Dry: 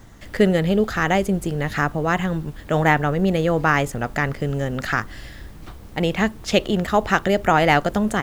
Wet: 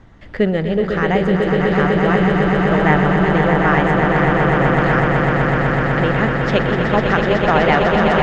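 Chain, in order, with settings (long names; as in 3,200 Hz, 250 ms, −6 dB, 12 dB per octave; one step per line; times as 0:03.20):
low-pass filter 3,000 Hz 12 dB per octave
on a send: echo that builds up and dies away 125 ms, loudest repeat 8, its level −5.5 dB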